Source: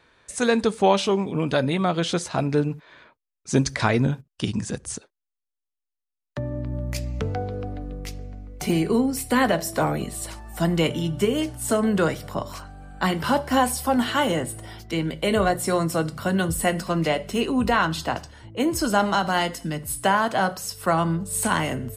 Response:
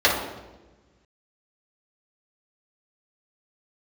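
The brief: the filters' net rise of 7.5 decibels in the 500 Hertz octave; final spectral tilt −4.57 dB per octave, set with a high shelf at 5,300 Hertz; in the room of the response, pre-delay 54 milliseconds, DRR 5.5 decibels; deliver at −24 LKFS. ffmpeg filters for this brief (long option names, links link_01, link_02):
-filter_complex "[0:a]equalizer=frequency=500:width_type=o:gain=9,highshelf=frequency=5300:gain=7.5,asplit=2[link_01][link_02];[1:a]atrim=start_sample=2205,adelay=54[link_03];[link_02][link_03]afir=irnorm=-1:irlink=0,volume=-26dB[link_04];[link_01][link_04]amix=inputs=2:normalize=0,volume=-5.5dB"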